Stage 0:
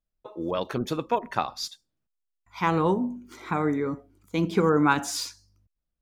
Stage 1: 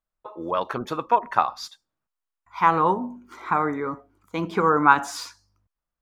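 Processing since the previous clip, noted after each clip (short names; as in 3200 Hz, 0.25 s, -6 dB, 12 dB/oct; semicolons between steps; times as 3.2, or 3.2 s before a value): bell 1100 Hz +14 dB 1.8 oct; gain -5 dB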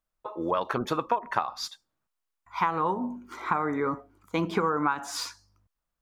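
compressor 12:1, threshold -24 dBFS, peak gain reduction 16 dB; gain +2 dB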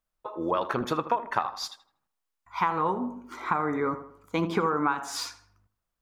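tape echo 80 ms, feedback 47%, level -11.5 dB, low-pass 2000 Hz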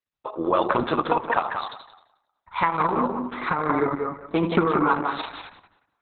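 gate with hold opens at -52 dBFS; tape echo 0.182 s, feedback 27%, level -3.5 dB, low-pass 2900 Hz; gain +5 dB; Opus 6 kbps 48000 Hz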